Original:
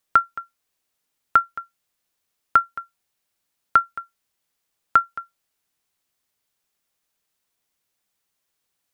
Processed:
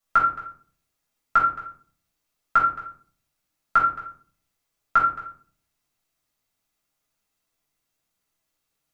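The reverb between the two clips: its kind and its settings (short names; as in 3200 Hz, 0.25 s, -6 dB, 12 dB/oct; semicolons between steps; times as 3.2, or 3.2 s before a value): shoebox room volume 420 m³, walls furnished, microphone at 6.7 m; gain -10 dB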